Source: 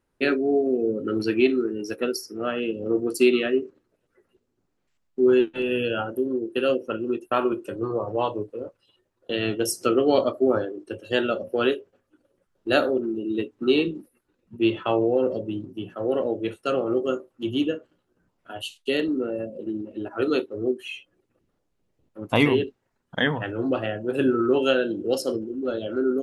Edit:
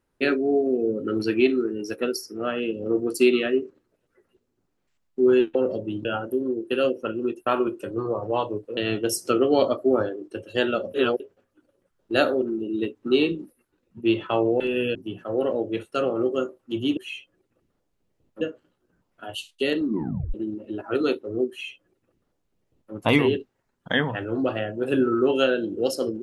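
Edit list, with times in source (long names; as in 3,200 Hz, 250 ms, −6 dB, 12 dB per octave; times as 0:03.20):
0:05.55–0:05.90: swap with 0:15.16–0:15.66
0:08.62–0:09.33: remove
0:11.50–0:11.76: reverse
0:19.11: tape stop 0.50 s
0:20.76–0:22.20: duplicate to 0:17.68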